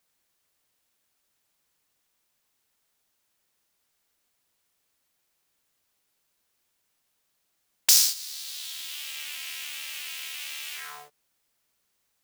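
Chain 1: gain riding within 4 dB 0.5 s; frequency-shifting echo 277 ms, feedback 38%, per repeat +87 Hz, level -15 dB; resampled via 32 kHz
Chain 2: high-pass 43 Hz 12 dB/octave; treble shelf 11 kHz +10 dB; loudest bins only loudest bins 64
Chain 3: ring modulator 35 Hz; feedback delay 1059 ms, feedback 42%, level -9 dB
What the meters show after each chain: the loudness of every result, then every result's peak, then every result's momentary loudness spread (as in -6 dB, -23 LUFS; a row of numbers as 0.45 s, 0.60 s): -28.5 LUFS, -28.5 LUFS, -28.5 LUFS; -5.0 dBFS, -7.5 dBFS, -1.5 dBFS; 11 LU, 17 LU, 24 LU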